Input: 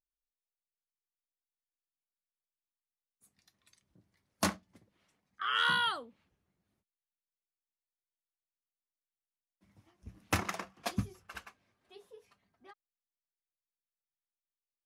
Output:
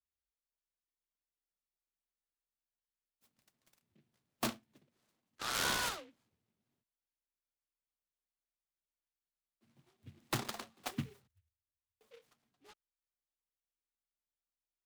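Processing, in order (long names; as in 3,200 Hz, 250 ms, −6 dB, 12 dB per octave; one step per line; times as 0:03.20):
0:11.27–0:12.01: inverse Chebyshev band-stop filter 170–7,800 Hz, stop band 60 dB
frequency shifter +34 Hz
short delay modulated by noise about 2,300 Hz, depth 0.12 ms
level −5 dB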